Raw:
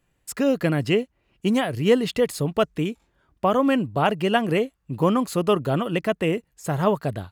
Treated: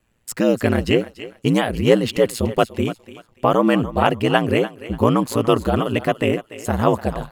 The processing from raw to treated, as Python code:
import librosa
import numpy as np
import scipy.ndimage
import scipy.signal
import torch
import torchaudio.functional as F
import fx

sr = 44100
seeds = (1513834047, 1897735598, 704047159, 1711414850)

y = fx.echo_thinned(x, sr, ms=291, feedback_pct=29, hz=490.0, wet_db=-13.0)
y = y * np.sin(2.0 * np.pi * 58.0 * np.arange(len(y)) / sr)
y = F.gain(torch.from_numpy(y), 6.5).numpy()